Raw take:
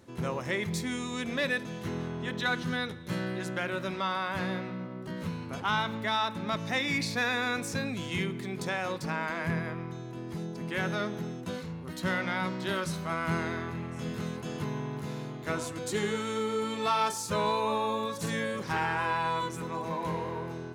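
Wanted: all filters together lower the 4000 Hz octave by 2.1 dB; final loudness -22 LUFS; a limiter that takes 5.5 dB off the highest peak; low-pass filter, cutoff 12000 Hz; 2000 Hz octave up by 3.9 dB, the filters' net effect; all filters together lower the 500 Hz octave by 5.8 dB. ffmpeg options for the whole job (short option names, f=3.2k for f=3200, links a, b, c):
-af "lowpass=12k,equalizer=f=500:t=o:g=-7.5,equalizer=f=2k:t=o:g=6.5,equalizer=f=4k:t=o:g=-4.5,volume=11dB,alimiter=limit=-10dB:level=0:latency=1"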